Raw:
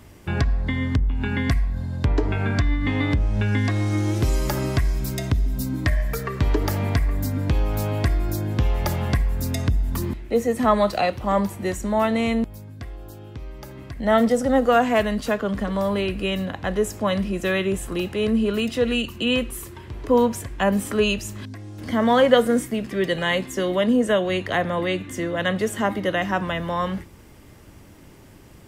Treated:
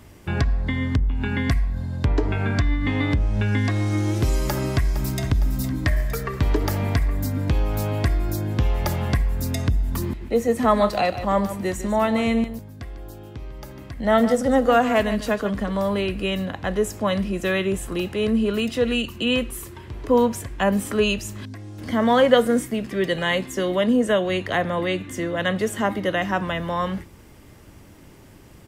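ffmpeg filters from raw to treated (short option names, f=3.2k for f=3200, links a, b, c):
-filter_complex "[0:a]asplit=2[a][b];[b]afade=t=in:st=4.49:d=0.01,afade=t=out:st=5.22:d=0.01,aecho=0:1:460|920|1380|1840|2300|2760|3220:0.281838|0.169103|0.101462|0.0608771|0.0365262|0.0219157|0.0131494[c];[a][c]amix=inputs=2:normalize=0,asettb=1/sr,asplit=3[d][e][f];[d]atrim=end=10.064[g];[e]atrim=start=10.06:end=15.5,asetpts=PTS-STARTPTS,afade=t=in:d=0.004:c=qsin,afade=t=out:st=5.436:d=0.004:c=qsin,aecho=1:1:149:0.251,atrim=end_sample=239904[h];[f]atrim=start=15.496[i];[g][h]acrossfade=d=0.004:c1=hsin:c2=qsin[j];[j][i]acrossfade=d=0.004:c1=qsin:c2=hsin"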